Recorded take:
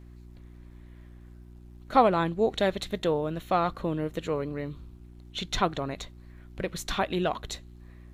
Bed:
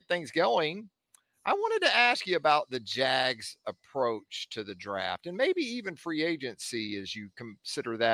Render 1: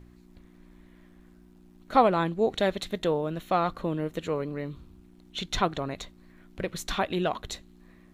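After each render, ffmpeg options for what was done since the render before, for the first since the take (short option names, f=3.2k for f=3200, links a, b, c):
-af "bandreject=f=60:t=h:w=4,bandreject=f=120:t=h:w=4"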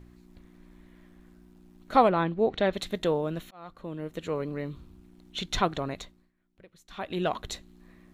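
-filter_complex "[0:a]asettb=1/sr,asplit=3[a][b][c];[a]atrim=end=2.094[d];[b]atrim=start=2.09:end=2.73,asetpts=PTS-STARTPTS,afade=t=in:d=0.004:c=qsin,afade=t=out:st=0.636:d=0.004:c=qsin,lowpass=3.5k[e];[c]atrim=start=2.726[f];[d][e]acrossfade=d=0.004:c1=hsin:c2=qsin[g];[g][f]acrossfade=d=0.004:c1=qsin:c2=hsin,asplit=4[h][i][j][k];[h]atrim=end=3.51,asetpts=PTS-STARTPTS,afade=t=out:st=3.506:d=0.004:c=hsin[l];[i]atrim=start=3.51:end=6.31,asetpts=PTS-STARTPTS,afade=t=in:d=0.98,afade=t=out:st=2.41:d=0.39:silence=0.0794328[m];[j]atrim=start=6.31:end=6.89,asetpts=PTS-STARTPTS,volume=-22dB[n];[k]atrim=start=6.89,asetpts=PTS-STARTPTS,afade=t=in:d=0.39:silence=0.0794328[o];[l][m][n][o]concat=n=4:v=0:a=1"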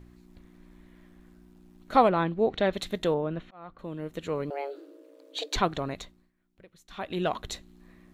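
-filter_complex "[0:a]asettb=1/sr,asplit=3[a][b][c];[a]atrim=end=3.144[d];[b]atrim=start=3.14:end=3.79,asetpts=PTS-STARTPTS,afade=t=in:d=0.004:c=qsin,afade=t=out:st=0.646:d=0.004:c=qsin,lowpass=2.5k[e];[c]atrim=start=3.786[f];[d][e]acrossfade=d=0.004:c1=hsin:c2=qsin[g];[g][f]acrossfade=d=0.004:c1=qsin:c2=hsin,asettb=1/sr,asplit=3[h][i][j];[h]atrim=end=4.504[k];[i]atrim=start=4.5:end=5.56,asetpts=PTS-STARTPTS,afade=t=in:d=0.004:c=qsin,afade=t=out:st=1.056:d=0.004:c=qsin,afreqshift=270[l];[j]atrim=start=5.556[m];[k][l]acrossfade=d=0.004:c1=hsin:c2=qsin[n];[n][m]acrossfade=d=0.004:c1=qsin:c2=hsin"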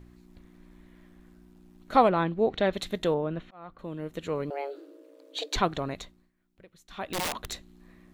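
-filter_complex "[0:a]asettb=1/sr,asplit=3[a][b][c];[a]atrim=end=7.134[d];[b]atrim=start=7.13:end=7.53,asetpts=PTS-STARTPTS,afade=t=in:d=0.004:c=qsin,afade=t=out:st=0.396:d=0.004:c=qsin,aeval=exprs='(mod(17.8*val(0)+1,2)-1)/17.8':c=same[e];[c]atrim=start=7.526[f];[d][e]acrossfade=d=0.004:c1=hsin:c2=qsin[g];[g][f]acrossfade=d=0.004:c1=qsin:c2=hsin"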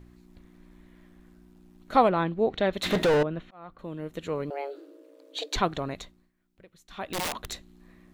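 -filter_complex "[0:a]asettb=1/sr,asplit=3[a][b][c];[a]atrim=end=2.834[d];[b]atrim=start=2.83:end=3.23,asetpts=PTS-STARTPTS,afade=t=in:d=0.004:c=qsin,afade=t=out:st=0.396:d=0.004:c=qsin,asplit=2[e][f];[f]highpass=f=720:p=1,volume=36dB,asoftclip=type=tanh:threshold=-15dB[g];[e][g]amix=inputs=2:normalize=0,lowpass=f=1.9k:p=1,volume=-6dB[h];[c]atrim=start=3.226[i];[d][h]acrossfade=d=0.004:c1=hsin:c2=qsin[j];[j][i]acrossfade=d=0.004:c1=qsin:c2=hsin"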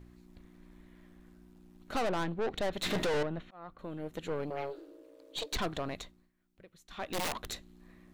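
-af "aeval=exprs='(tanh(28.2*val(0)+0.55)-tanh(0.55))/28.2':c=same"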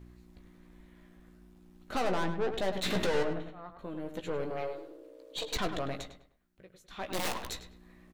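-filter_complex "[0:a]asplit=2[a][b];[b]adelay=16,volume=-8dB[c];[a][c]amix=inputs=2:normalize=0,asplit=2[d][e];[e]adelay=102,lowpass=f=2.6k:p=1,volume=-8dB,asplit=2[f][g];[g]adelay=102,lowpass=f=2.6k:p=1,volume=0.35,asplit=2[h][i];[i]adelay=102,lowpass=f=2.6k:p=1,volume=0.35,asplit=2[j][k];[k]adelay=102,lowpass=f=2.6k:p=1,volume=0.35[l];[f][h][j][l]amix=inputs=4:normalize=0[m];[d][m]amix=inputs=2:normalize=0"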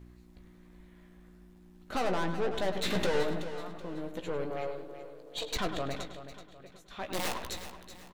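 -af "aecho=1:1:378|756|1134|1512:0.251|0.098|0.0382|0.0149"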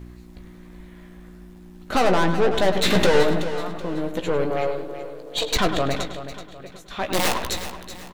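-af "volume=12dB"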